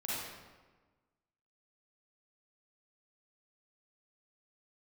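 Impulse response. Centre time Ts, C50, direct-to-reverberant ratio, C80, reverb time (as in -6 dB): 107 ms, -5.5 dB, -8.5 dB, 0.0 dB, 1.3 s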